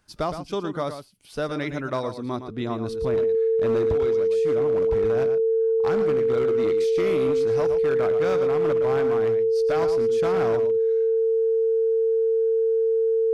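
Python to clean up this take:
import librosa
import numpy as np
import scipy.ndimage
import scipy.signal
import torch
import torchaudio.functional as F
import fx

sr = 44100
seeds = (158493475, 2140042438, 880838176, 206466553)

y = fx.fix_declip(x, sr, threshold_db=-17.5)
y = fx.notch(y, sr, hz=450.0, q=30.0)
y = fx.fix_echo_inverse(y, sr, delay_ms=115, level_db=-9.5)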